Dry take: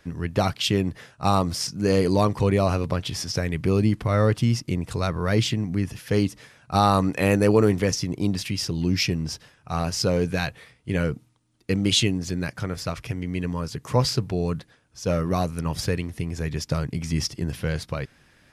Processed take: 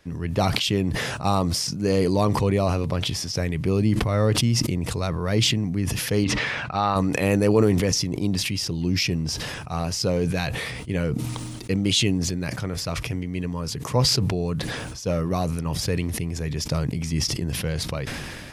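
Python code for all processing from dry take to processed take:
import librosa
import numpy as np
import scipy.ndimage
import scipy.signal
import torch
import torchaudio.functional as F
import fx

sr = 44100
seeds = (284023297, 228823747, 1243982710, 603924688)

y = fx.chain(x, sr, fx.lowpass(hz=2200.0, slope=12),
    fx.tilt_shelf(db=-7.0, hz=1100.0), at=(6.24, 6.96))
y = fx.peak_eq(y, sr, hz=1500.0, db=-4.0, octaves=0.59)
y = fx.sustainer(y, sr, db_per_s=25.0)
y = F.gain(torch.from_numpy(y), -1.0).numpy()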